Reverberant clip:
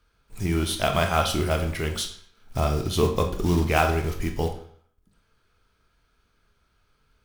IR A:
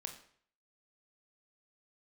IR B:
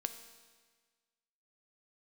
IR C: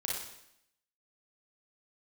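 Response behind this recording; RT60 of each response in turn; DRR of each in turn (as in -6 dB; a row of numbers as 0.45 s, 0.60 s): A; 0.55 s, 1.5 s, 0.75 s; 4.5 dB, 8.0 dB, -3.5 dB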